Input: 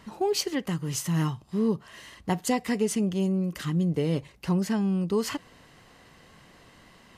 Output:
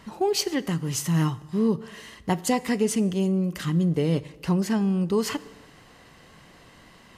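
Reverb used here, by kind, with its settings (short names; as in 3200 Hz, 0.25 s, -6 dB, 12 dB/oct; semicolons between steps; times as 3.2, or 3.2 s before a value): plate-style reverb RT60 1.3 s, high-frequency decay 0.75×, DRR 17 dB; gain +2.5 dB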